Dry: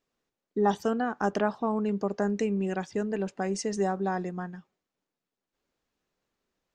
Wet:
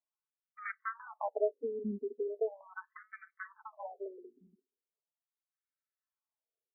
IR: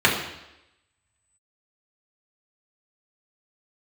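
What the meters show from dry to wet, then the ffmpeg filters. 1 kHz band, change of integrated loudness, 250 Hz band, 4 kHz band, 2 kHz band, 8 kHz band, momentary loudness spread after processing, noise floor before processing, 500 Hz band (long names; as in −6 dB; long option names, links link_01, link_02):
−13.0 dB, −10.0 dB, −17.5 dB, below −35 dB, −7.5 dB, below −35 dB, 17 LU, below −85 dBFS, −8.0 dB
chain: -af "aeval=exprs='0.282*(cos(1*acos(clip(val(0)/0.282,-1,1)))-cos(1*PI/2))+0.0316*(cos(6*acos(clip(val(0)/0.282,-1,1)))-cos(6*PI/2))+0.0316*(cos(7*acos(clip(val(0)/0.282,-1,1)))-cos(7*PI/2))':channel_layout=same,aecho=1:1:4.6:0.68,afftfilt=real='re*between(b*sr/1024,300*pow(1700/300,0.5+0.5*sin(2*PI*0.39*pts/sr))/1.41,300*pow(1700/300,0.5+0.5*sin(2*PI*0.39*pts/sr))*1.41)':imag='im*between(b*sr/1024,300*pow(1700/300,0.5+0.5*sin(2*PI*0.39*pts/sr))/1.41,300*pow(1700/300,0.5+0.5*sin(2*PI*0.39*pts/sr))*1.41)':win_size=1024:overlap=0.75,volume=-2.5dB"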